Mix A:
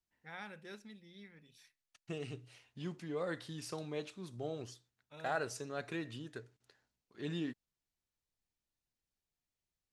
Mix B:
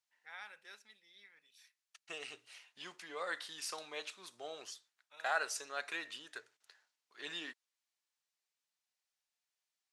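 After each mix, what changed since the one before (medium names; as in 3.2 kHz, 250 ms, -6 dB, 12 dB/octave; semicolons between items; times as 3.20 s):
second voice +6.0 dB; master: add high-pass 980 Hz 12 dB/octave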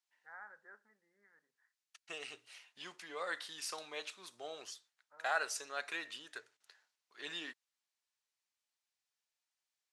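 first voice: add steep low-pass 1.8 kHz 72 dB/octave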